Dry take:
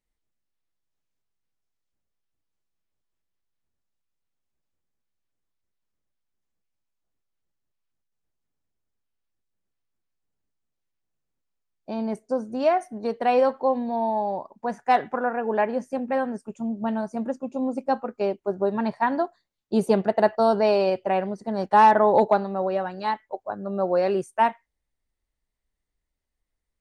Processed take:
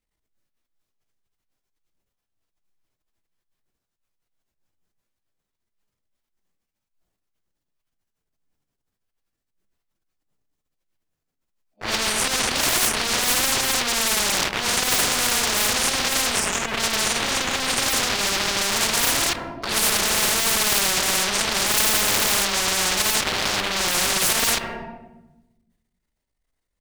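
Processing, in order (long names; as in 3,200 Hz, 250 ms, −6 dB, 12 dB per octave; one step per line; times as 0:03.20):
random phases in long frames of 200 ms
leveller curve on the samples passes 5
transient designer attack −11 dB, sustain +6 dB
on a send at −20 dB: convolution reverb RT60 1.0 s, pre-delay 3 ms
on the sum: every bin compressed towards the loudest bin 10 to 1
level −2 dB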